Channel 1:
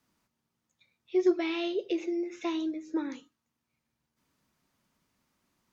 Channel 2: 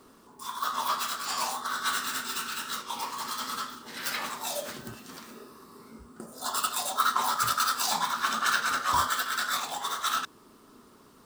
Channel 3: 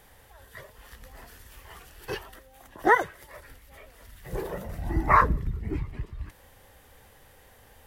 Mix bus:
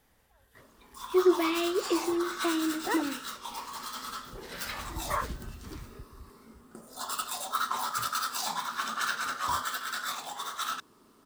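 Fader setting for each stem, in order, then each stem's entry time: +2.0 dB, -5.0 dB, -13.0 dB; 0.00 s, 0.55 s, 0.00 s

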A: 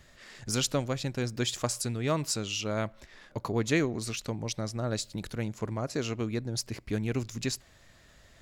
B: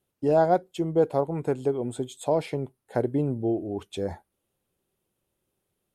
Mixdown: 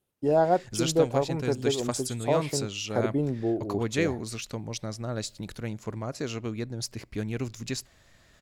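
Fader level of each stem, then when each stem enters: -1.0 dB, -1.5 dB; 0.25 s, 0.00 s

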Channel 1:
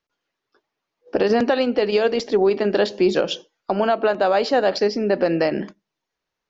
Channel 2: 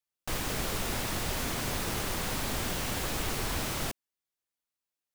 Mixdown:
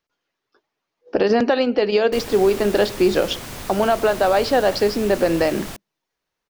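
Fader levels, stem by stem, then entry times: +1.0 dB, -1.0 dB; 0.00 s, 1.85 s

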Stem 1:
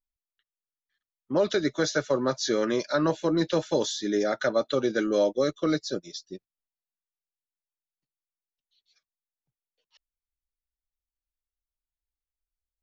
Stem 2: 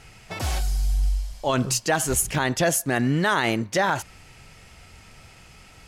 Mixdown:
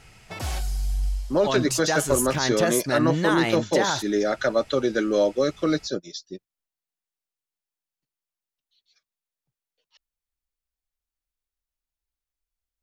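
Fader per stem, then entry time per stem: +2.5 dB, -3.0 dB; 0.00 s, 0.00 s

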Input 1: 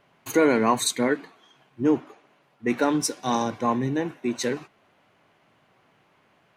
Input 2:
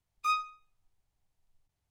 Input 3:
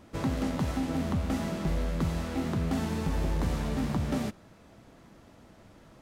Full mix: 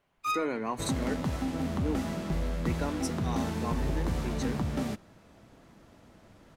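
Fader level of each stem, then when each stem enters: -12.5 dB, -1.5 dB, -1.5 dB; 0.00 s, 0.00 s, 0.65 s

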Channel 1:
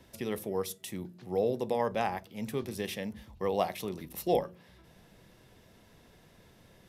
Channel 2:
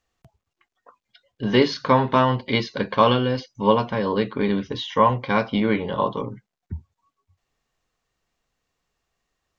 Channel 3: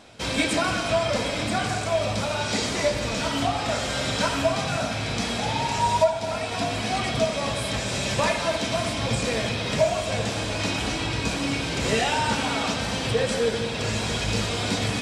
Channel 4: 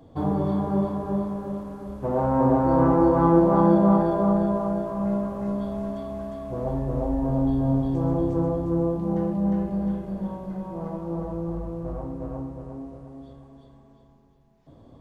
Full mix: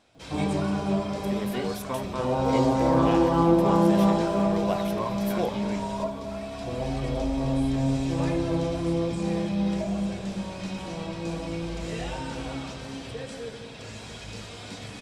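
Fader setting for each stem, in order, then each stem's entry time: -1.5 dB, -16.0 dB, -14.0 dB, -2.5 dB; 1.10 s, 0.00 s, 0.00 s, 0.15 s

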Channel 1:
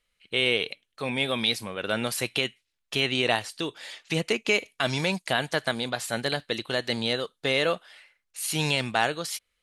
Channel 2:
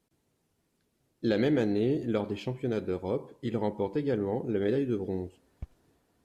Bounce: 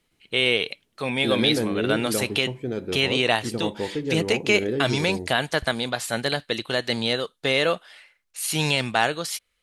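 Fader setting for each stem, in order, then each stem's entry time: +3.0 dB, +1.5 dB; 0.00 s, 0.00 s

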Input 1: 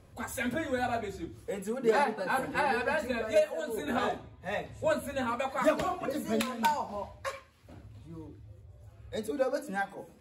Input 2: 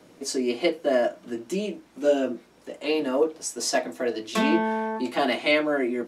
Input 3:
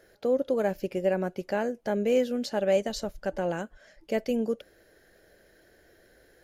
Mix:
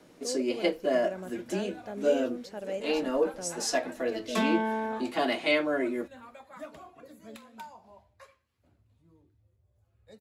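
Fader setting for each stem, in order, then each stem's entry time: -17.0 dB, -4.0 dB, -11.5 dB; 0.95 s, 0.00 s, 0.00 s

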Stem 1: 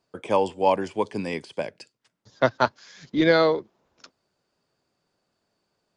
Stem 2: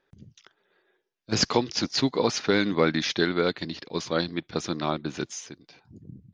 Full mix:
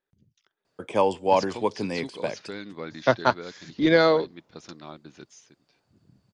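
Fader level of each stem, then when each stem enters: 0.0 dB, -14.5 dB; 0.65 s, 0.00 s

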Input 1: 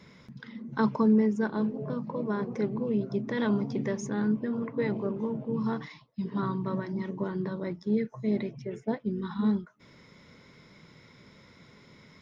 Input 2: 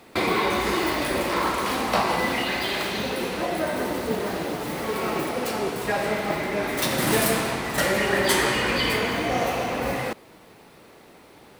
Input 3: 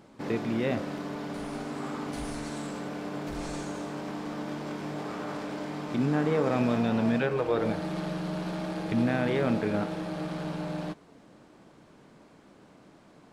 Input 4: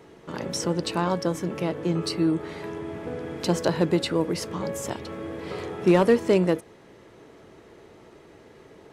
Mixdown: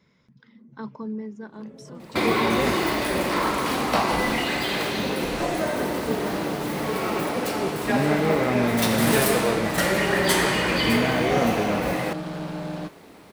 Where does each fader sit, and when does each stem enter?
-10.0 dB, 0.0 dB, +2.5 dB, -19.5 dB; 0.00 s, 2.00 s, 1.95 s, 1.25 s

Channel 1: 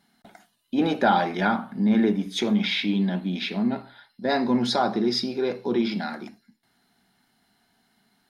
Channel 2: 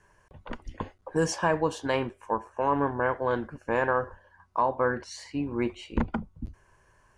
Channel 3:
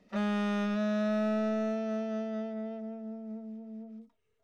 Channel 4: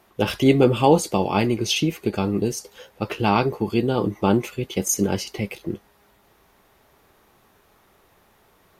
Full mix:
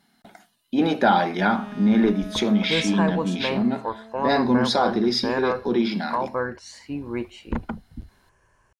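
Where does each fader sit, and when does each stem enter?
+2.0 dB, -0.5 dB, -6.5 dB, mute; 0.00 s, 1.55 s, 1.35 s, mute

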